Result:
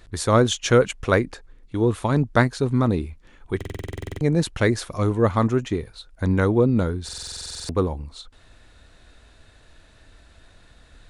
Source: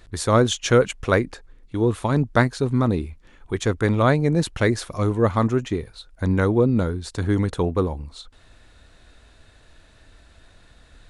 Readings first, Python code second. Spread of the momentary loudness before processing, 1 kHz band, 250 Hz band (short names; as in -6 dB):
11 LU, -1.0 dB, -1.0 dB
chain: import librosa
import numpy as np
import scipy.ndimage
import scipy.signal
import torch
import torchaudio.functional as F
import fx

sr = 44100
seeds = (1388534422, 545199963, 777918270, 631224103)

y = fx.buffer_glitch(x, sr, at_s=(3.56, 7.04), block=2048, repeats=13)